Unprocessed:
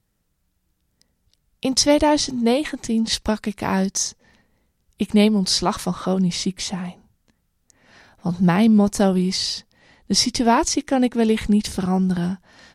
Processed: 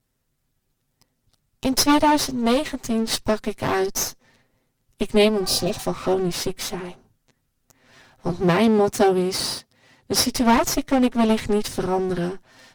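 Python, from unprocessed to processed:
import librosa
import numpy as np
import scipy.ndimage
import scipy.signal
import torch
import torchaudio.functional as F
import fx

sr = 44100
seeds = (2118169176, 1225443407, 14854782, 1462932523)

y = fx.lower_of_two(x, sr, delay_ms=7.7)
y = fx.spec_repair(y, sr, seeds[0], start_s=5.45, length_s=0.35, low_hz=690.0, high_hz=2400.0, source='both')
y = fx.highpass(y, sr, hz=49.0, slope=12, at=(8.41, 10.3))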